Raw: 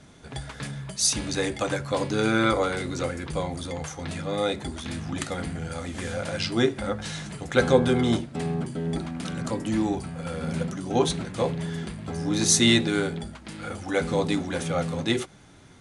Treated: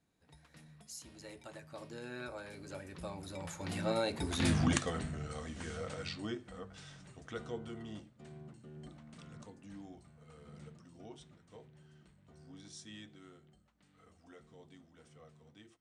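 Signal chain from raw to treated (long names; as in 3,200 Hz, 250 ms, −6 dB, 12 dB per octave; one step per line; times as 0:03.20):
camcorder AGC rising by 5.3 dB per second
source passing by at 0:04.51, 33 m/s, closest 5.6 metres
level +1 dB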